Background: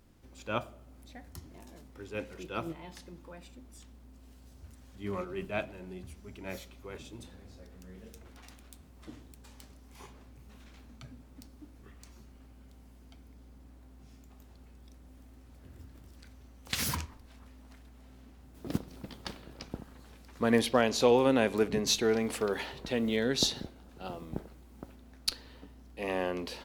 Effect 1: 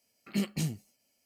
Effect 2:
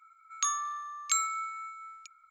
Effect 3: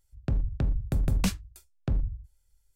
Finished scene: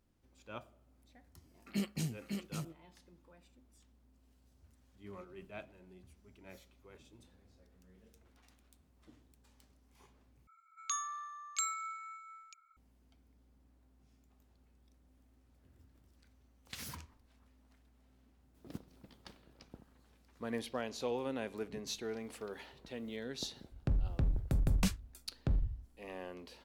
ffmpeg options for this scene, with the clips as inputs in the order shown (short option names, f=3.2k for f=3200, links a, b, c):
-filter_complex "[0:a]volume=-13.5dB[a];[1:a]aecho=1:1:552:0.596[b];[2:a]acontrast=44[c];[a]asplit=2[d][e];[d]atrim=end=10.474[f];[c]atrim=end=2.3,asetpts=PTS-STARTPTS,volume=-13dB[g];[e]atrim=start=12.766[h];[b]atrim=end=1.25,asetpts=PTS-STARTPTS,volume=-5.5dB,afade=t=in:d=0.004:c=hsin,afade=t=out:st=1.246:d=0.004:c=hsin,adelay=1400[i];[3:a]atrim=end=2.75,asetpts=PTS-STARTPTS,volume=-5dB,afade=t=in:d=0.004:c=hsin,afade=t=out:st=2.746:d=0.004:c=hsin,adelay=23590[j];[f][g]acrossfade=d=0.004:c1=hsin:c2=hsin[k];[k][h]acrossfade=d=0.004:c1=hsin:c2=hsin[l];[l][i][j]amix=inputs=3:normalize=0"